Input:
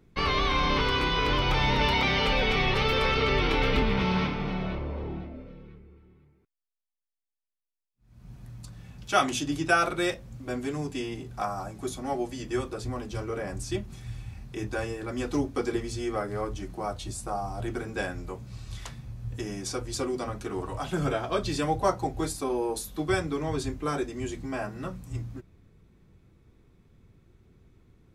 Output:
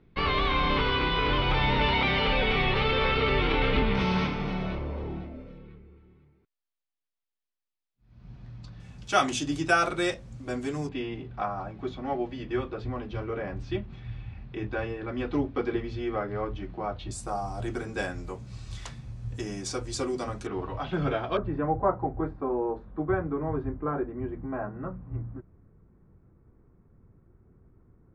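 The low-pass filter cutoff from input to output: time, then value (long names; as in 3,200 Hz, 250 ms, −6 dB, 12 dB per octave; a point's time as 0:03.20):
low-pass filter 24 dB per octave
4,000 Hz
from 0:03.95 10,000 Hz
from 0:05.58 4,800 Hz
from 0:08.80 9,200 Hz
from 0:10.89 3,500 Hz
from 0:17.11 9,200 Hz
from 0:20.47 3,900 Hz
from 0:21.37 1,500 Hz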